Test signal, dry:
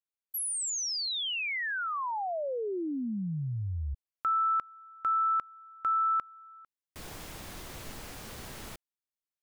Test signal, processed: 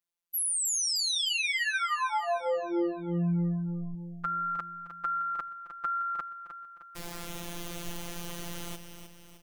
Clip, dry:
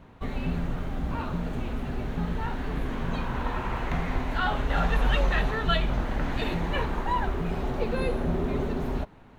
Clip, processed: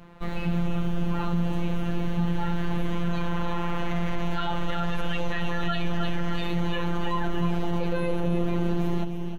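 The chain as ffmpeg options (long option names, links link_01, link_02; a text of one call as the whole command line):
ffmpeg -i in.wav -af "afftfilt=real='hypot(re,im)*cos(PI*b)':imag='0':win_size=1024:overlap=0.75,aecho=1:1:308|616|924|1232|1540|1848:0.355|0.177|0.0887|0.0444|0.0222|0.0111,alimiter=limit=-20.5dB:level=0:latency=1:release=35,volume=6.5dB" out.wav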